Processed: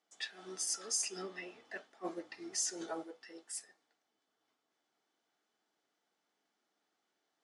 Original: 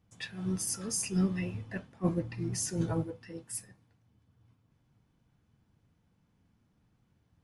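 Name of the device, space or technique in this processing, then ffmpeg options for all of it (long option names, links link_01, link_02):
phone speaker on a table: -filter_complex "[0:a]asettb=1/sr,asplit=3[link_01][link_02][link_03];[link_01]atrim=end=1.224[link_04];[link_02]atrim=start=1.22:end=1.65,asetpts=PTS-STARTPTS,afade=type=in:duration=0.004:curve=qsin,afade=type=out:start_time=0.426:duration=0.004:curve=qsin,highshelf=frequency=4700:gain=-6.5[link_05];[link_03]atrim=start=1.646[link_06];[link_04][link_05]acrossfade=duration=0.004:curve1=hsin:curve2=qsin[link_07];[link_07][link_06]acrossfade=duration=0.004:curve1=qsin:curve2=hsin,highpass=frequency=430:width=0.5412,highpass=frequency=430:width=1.3066,equalizer=frequency=510:width_type=q:width=4:gain=-10,equalizer=frequency=1000:width_type=q:width=4:gain=-9,equalizer=frequency=1600:width_type=q:width=4:gain=-3,equalizer=frequency=2500:width_type=q:width=4:gain=-7,lowpass=frequency=8300:width=0.5412,lowpass=frequency=8300:width=1.3066,volume=2dB"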